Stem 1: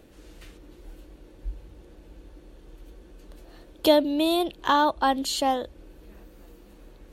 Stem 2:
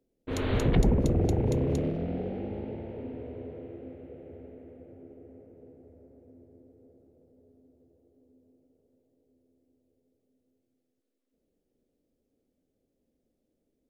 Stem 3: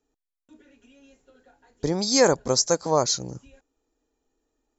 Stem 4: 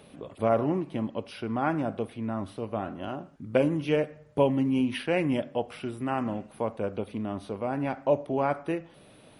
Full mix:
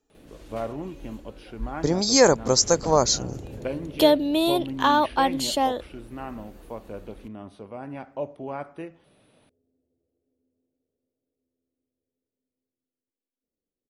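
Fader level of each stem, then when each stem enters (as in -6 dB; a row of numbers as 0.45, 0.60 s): +1.0, -13.5, +2.0, -7.0 dB; 0.15, 2.10, 0.00, 0.10 s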